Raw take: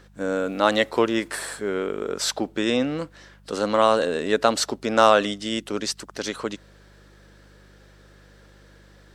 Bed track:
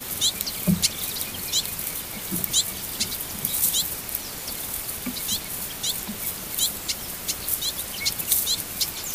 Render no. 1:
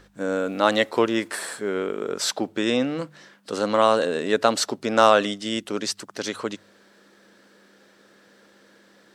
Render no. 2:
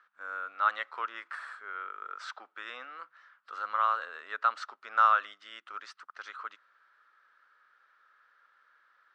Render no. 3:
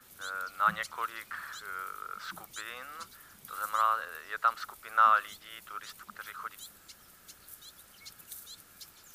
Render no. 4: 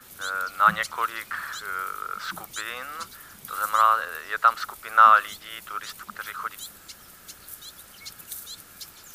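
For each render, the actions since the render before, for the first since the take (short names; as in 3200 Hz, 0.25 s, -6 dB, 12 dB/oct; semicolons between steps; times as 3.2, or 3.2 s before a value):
de-hum 50 Hz, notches 3
ladder band-pass 1400 Hz, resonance 70%
add bed track -24.5 dB
gain +8.5 dB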